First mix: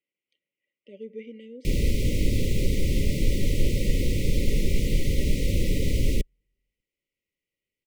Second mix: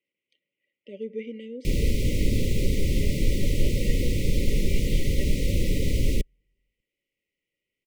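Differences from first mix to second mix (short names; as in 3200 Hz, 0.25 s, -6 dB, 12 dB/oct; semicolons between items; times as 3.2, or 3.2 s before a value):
speech +5.0 dB; second sound +4.0 dB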